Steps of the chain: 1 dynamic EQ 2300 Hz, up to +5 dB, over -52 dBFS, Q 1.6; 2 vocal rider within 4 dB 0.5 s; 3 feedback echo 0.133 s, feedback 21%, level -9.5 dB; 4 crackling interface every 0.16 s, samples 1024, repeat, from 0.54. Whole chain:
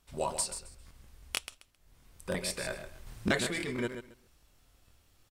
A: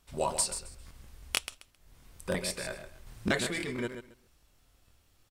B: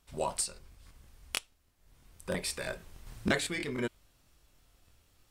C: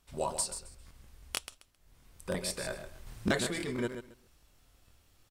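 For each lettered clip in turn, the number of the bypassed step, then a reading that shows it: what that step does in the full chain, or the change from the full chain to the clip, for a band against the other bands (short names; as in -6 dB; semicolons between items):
2, crest factor change +3.0 dB; 3, momentary loudness spread change -7 LU; 1, 2 kHz band -2.5 dB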